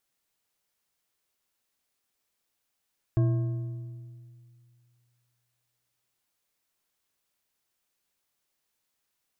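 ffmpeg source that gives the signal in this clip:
-f lavfi -i "aevalsrc='0.112*pow(10,-3*t/2.33)*sin(2*PI*121*t)+0.0398*pow(10,-3*t/1.719)*sin(2*PI*333.6*t)+0.0141*pow(10,-3*t/1.405)*sin(2*PI*653.9*t)+0.00501*pow(10,-3*t/1.208)*sin(2*PI*1080.9*t)+0.00178*pow(10,-3*t/1.071)*sin(2*PI*1614.1*t)':d=3.1:s=44100"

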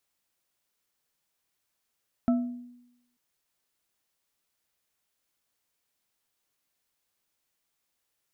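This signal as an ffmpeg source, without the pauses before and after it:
-f lavfi -i "aevalsrc='0.119*pow(10,-3*t/0.88)*sin(2*PI*244*t)+0.0422*pow(10,-3*t/0.433)*sin(2*PI*672.7*t)+0.015*pow(10,-3*t/0.27)*sin(2*PI*1318.6*t)':d=0.89:s=44100"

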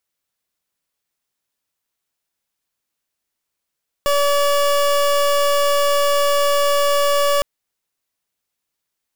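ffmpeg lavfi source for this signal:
-f lavfi -i "aevalsrc='0.158*(2*lt(mod(572*t,1),0.28)-1)':d=3.36:s=44100"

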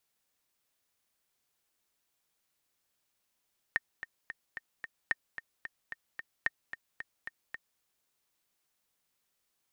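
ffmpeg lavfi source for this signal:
-f lavfi -i "aevalsrc='pow(10,(-14.5-12*gte(mod(t,5*60/222),60/222))/20)*sin(2*PI*1830*mod(t,60/222))*exp(-6.91*mod(t,60/222)/0.03)':d=4.05:s=44100"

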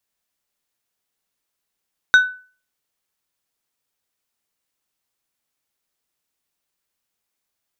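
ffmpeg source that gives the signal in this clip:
-f lavfi -i "aevalsrc='0.596*pow(10,-3*t/0.39)*sin(2*PI*1500*t)+0.158*pow(10,-3*t/0.205)*sin(2*PI*3750*t)+0.0422*pow(10,-3*t/0.148)*sin(2*PI*6000*t)+0.0112*pow(10,-3*t/0.126)*sin(2*PI*7500*t)+0.00299*pow(10,-3*t/0.105)*sin(2*PI*9750*t)':d=0.89:s=44100"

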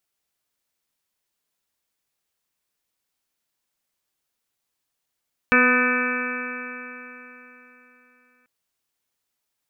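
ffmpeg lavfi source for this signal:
-f lavfi -i "aevalsrc='0.1*pow(10,-3*t/3.62)*sin(2*PI*247.12*t)+0.075*pow(10,-3*t/3.62)*sin(2*PI*494.98*t)+0.0178*pow(10,-3*t/3.62)*sin(2*PI*744.29*t)+0.0335*pow(10,-3*t/3.62)*sin(2*PI*995.79*t)+0.0891*pow(10,-3*t/3.62)*sin(2*PI*1250.19*t)+0.112*pow(10,-3*t/3.62)*sin(2*PI*1508.18*t)+0.106*pow(10,-3*t/3.62)*sin(2*PI*1770.44*t)+0.0119*pow(10,-3*t/3.62)*sin(2*PI*2037.64*t)+0.112*pow(10,-3*t/3.62)*sin(2*PI*2310.41*t)+0.0596*pow(10,-3*t/3.62)*sin(2*PI*2589.38*t)':d=2.94:s=44100"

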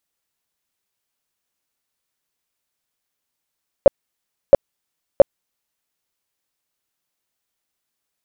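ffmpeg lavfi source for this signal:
-f lavfi -i "aevalsrc='0.794*sin(2*PI*559*mod(t,0.67))*lt(mod(t,0.67),10/559)':d=2.01:s=44100"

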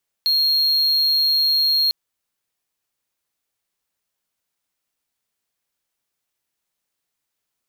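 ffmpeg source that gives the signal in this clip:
-f lavfi -i "aevalsrc='0.224*(1-4*abs(mod(4250*t+0.25,1)-0.5))':d=1.65:s=44100"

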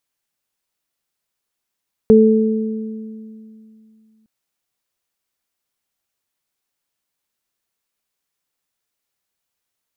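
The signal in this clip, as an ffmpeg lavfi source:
-f lavfi -i "aevalsrc='0.398*pow(10,-3*t/2.74)*sin(2*PI*219*t)+0.473*pow(10,-3*t/1.73)*sin(2*PI*438*t)':d=2.16:s=44100"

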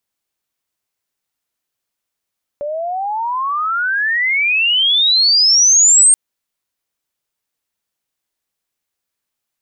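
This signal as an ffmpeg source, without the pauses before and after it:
-f lavfi -i "aevalsrc='pow(10,(-19.5+14*t/3.53)/20)*sin(2*PI*570*3.53/log(8700/570)*(exp(log(8700/570)*t/3.53)-1))':d=3.53:s=44100"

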